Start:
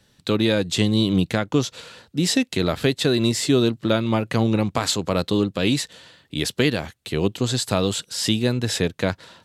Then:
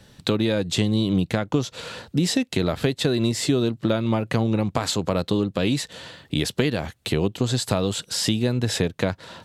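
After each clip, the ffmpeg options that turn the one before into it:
ffmpeg -i in.wav -af "equalizer=frequency=650:width_type=o:width=1.6:gain=3.5,acompressor=threshold=-30dB:ratio=3,bass=frequency=250:gain=4,treble=frequency=4000:gain=-1,volume=6.5dB" out.wav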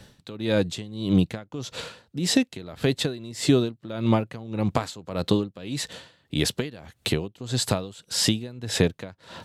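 ffmpeg -i in.wav -af "aeval=exprs='val(0)*pow(10,-20*(0.5-0.5*cos(2*PI*1.7*n/s))/20)':channel_layout=same,volume=2.5dB" out.wav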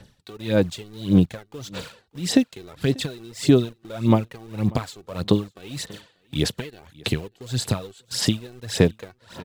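ffmpeg -i in.wav -filter_complex "[0:a]asplit=2[link_01][link_02];[link_02]acrusher=bits=5:mix=0:aa=0.000001,volume=-8dB[link_03];[link_01][link_03]amix=inputs=2:normalize=0,aecho=1:1:590:0.0668,aphaser=in_gain=1:out_gain=1:delay=2.7:decay=0.57:speed=1.7:type=sinusoidal,volume=-6dB" out.wav

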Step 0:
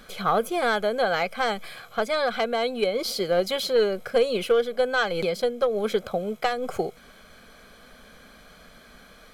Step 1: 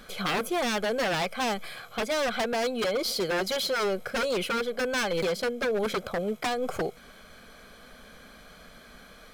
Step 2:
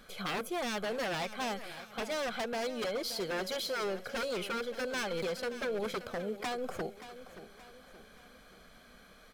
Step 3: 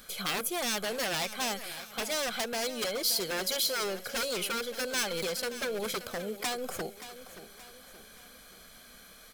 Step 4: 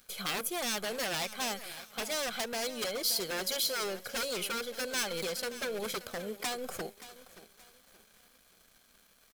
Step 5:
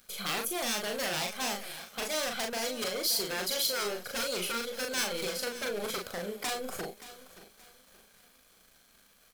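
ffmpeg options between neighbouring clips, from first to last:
ffmpeg -i in.wav -af "aeval=exprs='0.0794*(abs(mod(val(0)/0.0794+3,4)-2)-1)':channel_layout=same" out.wav
ffmpeg -i in.wav -af "aecho=1:1:576|1152|1728|2304:0.211|0.0951|0.0428|0.0193,volume=-7.5dB" out.wav
ffmpeg -i in.wav -af "crystalizer=i=3.5:c=0" out.wav
ffmpeg -i in.wav -af "aeval=exprs='sgn(val(0))*max(abs(val(0))-0.00251,0)':channel_layout=same,volume=-1.5dB" out.wav
ffmpeg -i in.wav -filter_complex "[0:a]asplit=2[link_01][link_02];[link_02]adelay=39,volume=-3.5dB[link_03];[link_01][link_03]amix=inputs=2:normalize=0" out.wav

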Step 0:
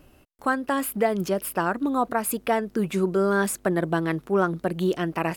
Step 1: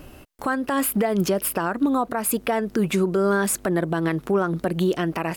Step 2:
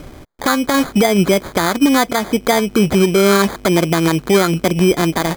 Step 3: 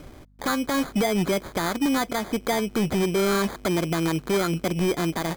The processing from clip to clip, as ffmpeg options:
ffmpeg -i in.wav -filter_complex "[0:a]asplit=2[link_01][link_02];[link_02]acompressor=threshold=-31dB:ratio=6,volume=0.5dB[link_03];[link_01][link_03]amix=inputs=2:normalize=0,alimiter=limit=-17.5dB:level=0:latency=1:release=165,volume=4.5dB" out.wav
ffmpeg -i in.wav -af "lowpass=4600,acrusher=samples=16:mix=1:aa=0.000001,volume=8.5dB" out.wav
ffmpeg -i in.wav -af "aeval=exprs='val(0)+0.00447*(sin(2*PI*50*n/s)+sin(2*PI*2*50*n/s)/2+sin(2*PI*3*50*n/s)/3+sin(2*PI*4*50*n/s)/4+sin(2*PI*5*50*n/s)/5)':channel_layout=same,asoftclip=type=hard:threshold=-10dB,volume=-8.5dB" out.wav

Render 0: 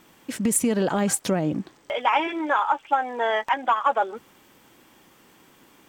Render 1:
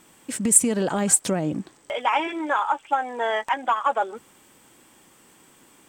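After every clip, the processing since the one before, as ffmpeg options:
ffmpeg -i in.wav -af "equalizer=frequency=8300:width=2.6:gain=12,volume=-1dB" out.wav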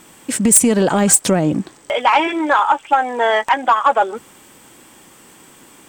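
ffmpeg -i in.wav -af "aeval=exprs='0.891*sin(PI/2*2.82*val(0)/0.891)':channel_layout=same,volume=-3.5dB" out.wav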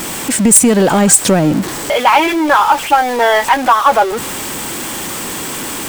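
ffmpeg -i in.wav -af "aeval=exprs='val(0)+0.5*0.1*sgn(val(0))':channel_layout=same,volume=2.5dB" out.wav

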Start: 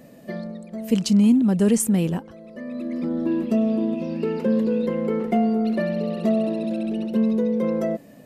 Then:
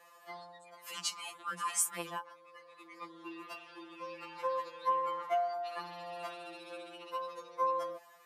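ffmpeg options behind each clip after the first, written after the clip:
ffmpeg -i in.wav -af "highpass=frequency=1100:width_type=q:width=6,afftfilt=real='re*2.83*eq(mod(b,8),0)':imag='im*2.83*eq(mod(b,8),0)':win_size=2048:overlap=0.75,volume=-3.5dB" out.wav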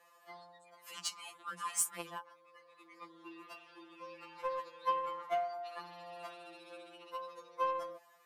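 ffmpeg -i in.wav -af "aeval=exprs='0.15*(cos(1*acos(clip(val(0)/0.15,-1,1)))-cos(1*PI/2))+0.00841*(cos(7*acos(clip(val(0)/0.15,-1,1)))-cos(7*PI/2))':channel_layout=same,volume=-1dB" out.wav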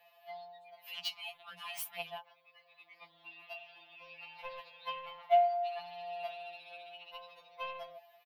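ffmpeg -i in.wav -af "firequalizer=gain_entry='entry(140,0);entry(230,-25);entry(430,-25);entry(680,6);entry(1100,-16);entry(2600,4);entry(4000,-1);entry(7500,-24);entry(15000,5)':delay=0.05:min_phase=1,volume=4dB" out.wav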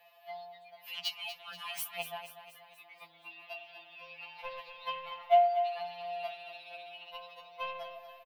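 ffmpeg -i in.wav -af "aecho=1:1:240|480|720|960|1200|1440:0.282|0.149|0.0792|0.042|0.0222|0.0118,volume=2.5dB" out.wav

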